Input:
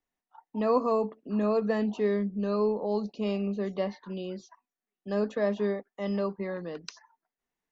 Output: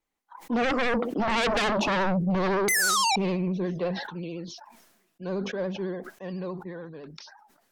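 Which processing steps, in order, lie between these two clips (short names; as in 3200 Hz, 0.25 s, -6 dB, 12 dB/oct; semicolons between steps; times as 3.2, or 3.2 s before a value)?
Doppler pass-by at 1.6, 30 m/s, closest 8.5 m; in parallel at -3 dB: limiter -27.5 dBFS, peak gain reduction 10.5 dB; on the sum: painted sound fall, 2.68–3.16, 750–2200 Hz -22 dBFS; soft clip -21.5 dBFS, distortion -16 dB; vibrato 14 Hz 74 cents; sine folder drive 11 dB, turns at -21.5 dBFS; sustainer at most 53 dB/s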